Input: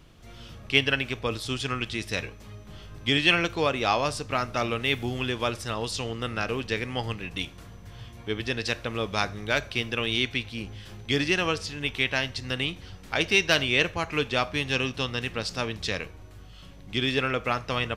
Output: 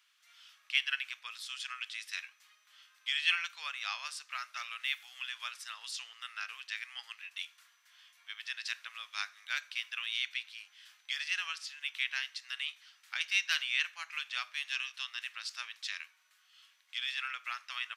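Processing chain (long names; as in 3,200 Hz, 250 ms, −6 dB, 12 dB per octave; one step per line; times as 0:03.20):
inverse Chebyshev high-pass filter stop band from 230 Hz, stop band 80 dB
level −7.5 dB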